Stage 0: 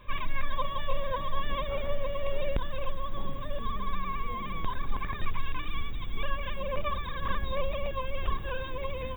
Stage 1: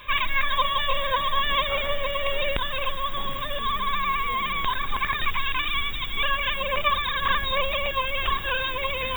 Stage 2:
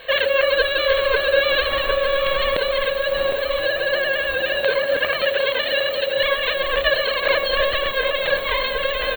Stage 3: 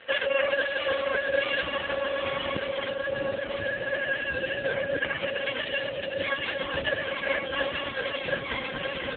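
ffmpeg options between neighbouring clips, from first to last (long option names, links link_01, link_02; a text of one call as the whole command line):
ffmpeg -i in.wav -af "tiltshelf=frequency=900:gain=-9.5,areverse,acompressor=mode=upward:threshold=-33dB:ratio=2.5,areverse,volume=8.5dB" out.wav
ffmpeg -i in.wav -filter_complex "[0:a]aeval=exprs='val(0)*sin(2*PI*550*n/s)':channel_layout=same,asplit=2[link_01][link_02];[link_02]adelay=758,volume=-7dB,highshelf=frequency=4000:gain=-17.1[link_03];[link_01][link_03]amix=inputs=2:normalize=0,volume=6.5dB" out.wav
ffmpeg -i in.wav -af "asubboost=boost=9.5:cutoff=200,volume=-4dB" -ar 8000 -c:a libopencore_amrnb -b:a 5900 out.amr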